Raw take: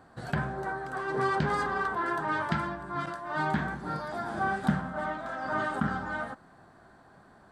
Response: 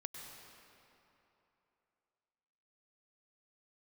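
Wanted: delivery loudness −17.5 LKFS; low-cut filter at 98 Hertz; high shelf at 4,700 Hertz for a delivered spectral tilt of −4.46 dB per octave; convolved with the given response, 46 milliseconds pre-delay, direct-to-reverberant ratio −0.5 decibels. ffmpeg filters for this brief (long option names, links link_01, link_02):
-filter_complex "[0:a]highpass=98,highshelf=frequency=4700:gain=9,asplit=2[link_01][link_02];[1:a]atrim=start_sample=2205,adelay=46[link_03];[link_02][link_03]afir=irnorm=-1:irlink=0,volume=3dB[link_04];[link_01][link_04]amix=inputs=2:normalize=0,volume=10.5dB"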